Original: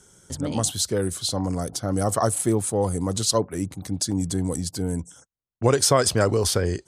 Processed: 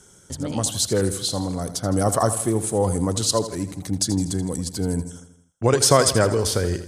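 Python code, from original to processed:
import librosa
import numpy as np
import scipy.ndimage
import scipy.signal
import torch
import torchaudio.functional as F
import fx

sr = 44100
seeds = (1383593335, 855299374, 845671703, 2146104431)

y = x * (1.0 - 0.35 / 2.0 + 0.35 / 2.0 * np.cos(2.0 * np.pi * 1.0 * (np.arange(len(x)) / sr)))
y = fx.echo_feedback(y, sr, ms=81, feedback_pct=54, wet_db=-12.5)
y = y * librosa.db_to_amplitude(3.0)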